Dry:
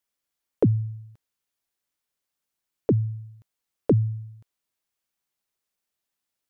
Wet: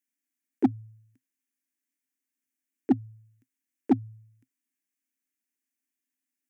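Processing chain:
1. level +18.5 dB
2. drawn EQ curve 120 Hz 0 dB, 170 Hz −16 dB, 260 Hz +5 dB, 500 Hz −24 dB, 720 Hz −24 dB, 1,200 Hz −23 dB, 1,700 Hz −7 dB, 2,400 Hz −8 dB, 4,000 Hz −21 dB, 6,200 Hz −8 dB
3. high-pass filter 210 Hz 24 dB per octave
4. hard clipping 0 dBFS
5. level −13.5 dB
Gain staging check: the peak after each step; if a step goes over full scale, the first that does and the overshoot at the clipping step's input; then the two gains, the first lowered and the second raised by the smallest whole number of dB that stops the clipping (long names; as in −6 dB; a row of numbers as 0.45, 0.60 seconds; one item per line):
+7.5, +7.5, +6.0, 0.0, −13.5 dBFS
step 1, 6.0 dB
step 1 +12.5 dB, step 5 −7.5 dB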